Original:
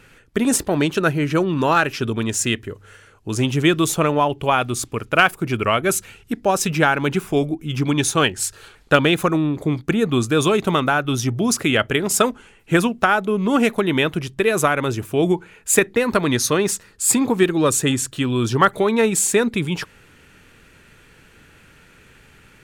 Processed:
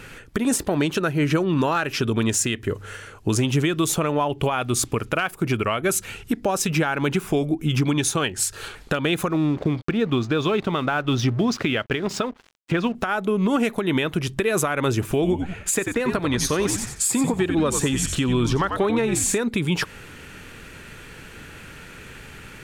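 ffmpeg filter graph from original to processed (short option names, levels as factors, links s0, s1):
-filter_complex "[0:a]asettb=1/sr,asplit=3[s0][s1][s2];[s0]atrim=end=9.304[s3];[s1]atrim=start=9.3:end=12.95,asetpts=PTS-STARTPTS,afade=t=in:d=0.004:c=qsin,afade=t=out:st=3.646:d=0.004:c=qsin,lowpass=f=4800:w=0.5412,lowpass=f=4800:w=1.3066,aeval=exprs='sgn(val(0))*max(abs(val(0))-0.00794,0)':c=same[s4];[s2]atrim=start=12.946[s5];[s3][s4]acrossfade=d=0.004:c1=hsin:c2=qsin[s6];[s6][s5]acrossfade=d=0.004:c1=qsin:c2=hsin,asettb=1/sr,asplit=3[s7][s8][s9];[s7]atrim=end=15.014[s10];[s8]atrim=start=15.01:end=19.38,asetpts=PTS-STARTPTS,afade=t=in:d=0.004:c=qsin,afade=t=out:st=4.366:d=0.004:c=qsin,highshelf=f=8400:g=-7.5,asplit=5[s11][s12][s13][s14][s15];[s12]adelay=91,afreqshift=-90,volume=0.335[s16];[s13]adelay=182,afreqshift=-180,volume=0.107[s17];[s14]adelay=273,afreqshift=-270,volume=0.0343[s18];[s15]adelay=364,afreqshift=-360,volume=0.011[s19];[s11][s16][s17][s18][s19]amix=inputs=5:normalize=0,atrim=end_sample=192717[s20];[s9]atrim=start=19.376[s21];[s10][s20]acrossfade=d=0.004:c1=hsin:c2=qsin[s22];[s22][s21]acrossfade=d=0.004:c1=qsin:c2=hsin,acompressor=threshold=0.0501:ratio=5,alimiter=limit=0.1:level=0:latency=1:release=162,volume=2.66"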